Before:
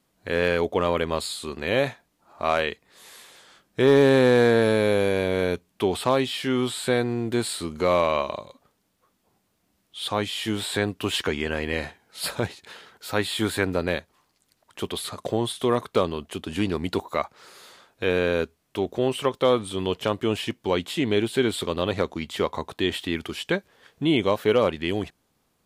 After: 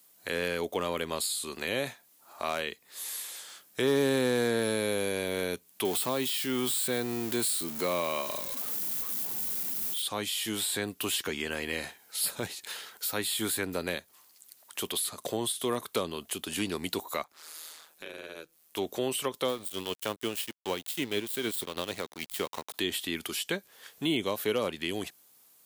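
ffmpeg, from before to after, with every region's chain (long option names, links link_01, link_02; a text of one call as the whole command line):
ffmpeg -i in.wav -filter_complex "[0:a]asettb=1/sr,asplit=3[link_01][link_02][link_03];[link_01]atrim=end=5.854[link_04];[link_02]atrim=start=5.85:end=10.02,asetpts=PTS-STARTPTS,afade=type=in:duration=0.004:curve=qsin,afade=type=out:start_time=4.166:duration=0.004:curve=qsin,aeval=exprs='val(0)+0.5*0.0224*sgn(val(0))':channel_layout=same,highpass=92[link_05];[link_03]atrim=start=10.016[link_06];[link_04][link_05]acrossfade=duration=0.004:curve1=hsin:curve2=qsin[link_07];[link_07][link_06]acrossfade=duration=0.004:curve1=qsin:curve2=hsin,asettb=1/sr,asplit=3[link_08][link_09][link_10];[link_08]atrim=end=17.234[link_11];[link_09]atrim=start=17.23:end=18.77,asetpts=PTS-STARTPTS,afade=type=in:duration=0.004:curve=qsin,afade=type=out:start_time=1.536:duration=0.004:curve=qsin,acompressor=threshold=-48dB:ratio=2:attack=3.2:release=140:knee=1:detection=peak,aeval=exprs='val(0)*sin(2*PI*79*n/s)':channel_layout=same[link_12];[link_10]atrim=start=18.766[link_13];[link_11][link_12]acrossfade=duration=0.004:curve1=hsin:curve2=qsin[link_14];[link_14][link_13]acrossfade=duration=0.004:curve1=qsin:curve2=hsin,asettb=1/sr,asplit=3[link_15][link_16][link_17];[link_15]atrim=end=19.484[link_18];[link_16]atrim=start=19.48:end=22.74,asetpts=PTS-STARTPTS,afade=type=in:duration=0.004:curve=qsin,afade=type=out:start_time=3.256:duration=0.004:curve=qsin,tremolo=f=6.5:d=0.45,aeval=exprs='sgn(val(0))*max(abs(val(0))-0.0119,0)':channel_layout=same[link_19];[link_17]atrim=start=22.736[link_20];[link_18][link_19]acrossfade=duration=0.004:curve1=hsin:curve2=qsin[link_21];[link_21][link_20]acrossfade=duration=0.004:curve1=qsin:curve2=hsin,aemphasis=mode=production:type=riaa,acrossover=split=330[link_22][link_23];[link_23]acompressor=threshold=-34dB:ratio=2.5[link_24];[link_22][link_24]amix=inputs=2:normalize=0" out.wav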